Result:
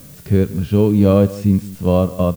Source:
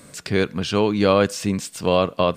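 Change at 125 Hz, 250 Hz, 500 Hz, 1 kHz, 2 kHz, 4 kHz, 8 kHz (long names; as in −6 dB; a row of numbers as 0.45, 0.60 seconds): +11.0 dB, +7.5 dB, +2.0 dB, −4.5 dB, −9.5 dB, −10.5 dB, can't be measured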